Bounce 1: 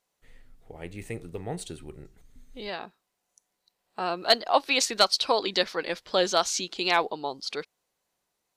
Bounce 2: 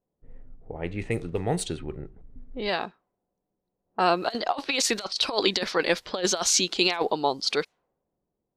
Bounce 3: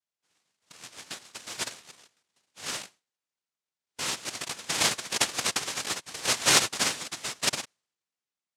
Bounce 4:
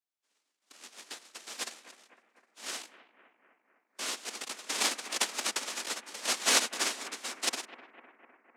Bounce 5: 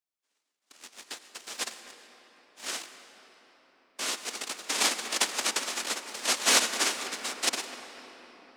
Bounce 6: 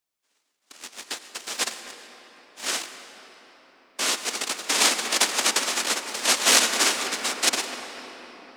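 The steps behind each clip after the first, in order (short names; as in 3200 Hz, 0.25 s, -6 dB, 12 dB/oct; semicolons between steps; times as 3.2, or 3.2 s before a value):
negative-ratio compressor -27 dBFS, ratio -0.5; low-pass opened by the level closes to 360 Hz, open at -27.5 dBFS; gain +4.5 dB
tilt +4.5 dB/oct; noise vocoder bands 1; gain -9 dB
frequency shift +120 Hz; analogue delay 0.253 s, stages 4096, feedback 64%, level -14 dB; gain -4.5 dB
sample leveller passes 1; on a send at -10 dB: reverb RT60 5.0 s, pre-delay 82 ms
core saturation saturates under 4000 Hz; gain +8 dB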